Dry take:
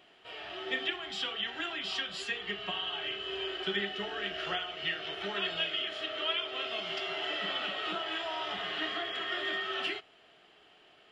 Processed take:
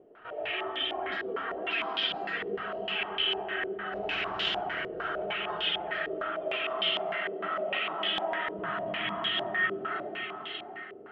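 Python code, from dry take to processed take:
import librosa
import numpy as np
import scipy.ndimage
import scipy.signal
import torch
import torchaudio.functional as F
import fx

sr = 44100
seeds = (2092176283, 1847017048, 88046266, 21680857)

p1 = fx.spec_flatten(x, sr, power=0.42, at=(3.92, 4.54), fade=0.02)
p2 = fx.dereverb_blind(p1, sr, rt60_s=0.81)
p3 = fx.spec_gate(p2, sr, threshold_db=-25, keep='strong')
p4 = fx.low_shelf_res(p3, sr, hz=280.0, db=11.5, q=3.0, at=(8.54, 9.26))
p5 = fx.over_compress(p4, sr, threshold_db=-41.0, ratio=-1.0)
p6 = p5 + fx.echo_feedback(p5, sr, ms=588, feedback_pct=28, wet_db=-7.0, dry=0)
p7 = fx.rev_freeverb(p6, sr, rt60_s=3.7, hf_ratio=0.35, predelay_ms=30, drr_db=-2.0)
y = fx.filter_held_lowpass(p7, sr, hz=6.6, low_hz=450.0, high_hz=3300.0)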